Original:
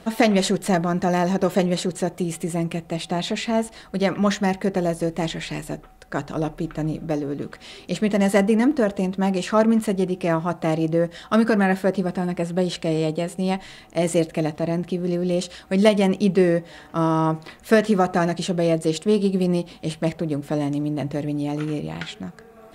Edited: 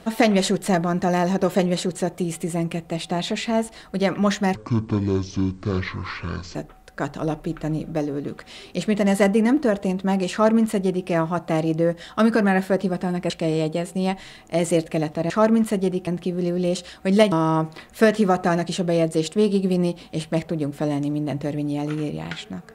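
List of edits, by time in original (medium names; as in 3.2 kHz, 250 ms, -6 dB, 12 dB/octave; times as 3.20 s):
4.55–5.69 s: speed 57%
9.46–10.23 s: copy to 14.73 s
12.44–12.73 s: delete
15.98–17.02 s: delete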